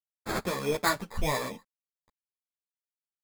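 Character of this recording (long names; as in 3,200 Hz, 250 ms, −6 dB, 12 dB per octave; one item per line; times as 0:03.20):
aliases and images of a low sample rate 2,900 Hz, jitter 0%
tremolo triangle 0.78 Hz, depth 40%
a quantiser's noise floor 12 bits, dither none
a shimmering, thickened sound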